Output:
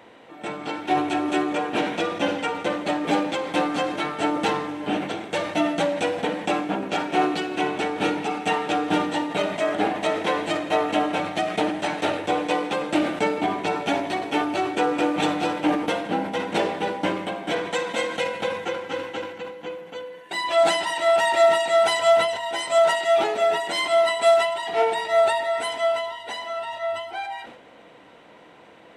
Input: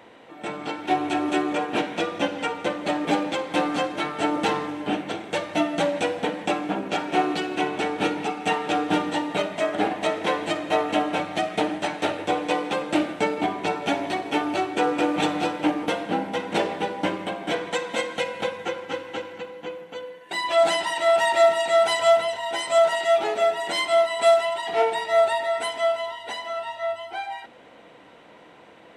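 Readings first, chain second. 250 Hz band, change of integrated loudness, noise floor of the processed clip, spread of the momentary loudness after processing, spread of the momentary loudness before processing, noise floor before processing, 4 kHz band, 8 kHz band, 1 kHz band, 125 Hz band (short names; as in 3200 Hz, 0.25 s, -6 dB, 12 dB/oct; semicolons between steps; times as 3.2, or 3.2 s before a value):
+1.0 dB, +1.0 dB, -49 dBFS, 11 LU, 11 LU, -49 dBFS, +1.0 dB, +0.5 dB, +1.0 dB, +1.0 dB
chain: sustainer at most 64 dB/s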